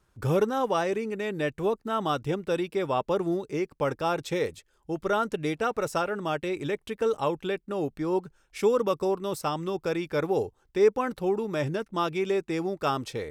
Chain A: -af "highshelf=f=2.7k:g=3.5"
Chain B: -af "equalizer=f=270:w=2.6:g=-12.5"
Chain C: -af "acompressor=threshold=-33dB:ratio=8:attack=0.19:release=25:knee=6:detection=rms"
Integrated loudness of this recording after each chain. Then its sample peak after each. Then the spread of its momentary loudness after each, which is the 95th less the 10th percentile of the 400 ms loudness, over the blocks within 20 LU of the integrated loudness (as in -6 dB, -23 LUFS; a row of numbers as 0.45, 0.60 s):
-28.5, -30.5, -39.0 LUFS; -11.0, -14.0, -30.0 dBFS; 6, 7, 3 LU